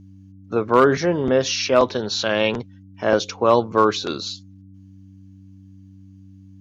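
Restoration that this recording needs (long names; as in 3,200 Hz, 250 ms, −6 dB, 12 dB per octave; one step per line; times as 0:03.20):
clipped peaks rebuilt −4.5 dBFS
hum removal 96.1 Hz, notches 3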